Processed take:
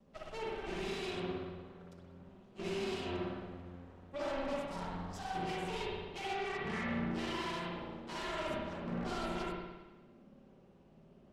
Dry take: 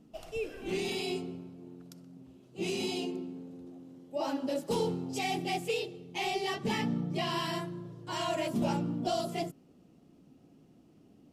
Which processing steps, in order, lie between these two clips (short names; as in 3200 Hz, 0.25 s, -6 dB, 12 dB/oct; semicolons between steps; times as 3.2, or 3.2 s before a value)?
minimum comb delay 5.1 ms; 6.33–6.88 resonant high shelf 2900 Hz -10.5 dB, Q 3; 8.43–8.89 negative-ratio compressor -38 dBFS, ratio -0.5; limiter -30 dBFS, peak gain reduction 8.5 dB; 4.6–5.35 fixed phaser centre 910 Hz, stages 4; added harmonics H 6 -14 dB, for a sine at -30 dBFS; air absorption 60 m; spring tank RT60 1.2 s, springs 56 ms, chirp 45 ms, DRR -3.5 dB; gain -4.5 dB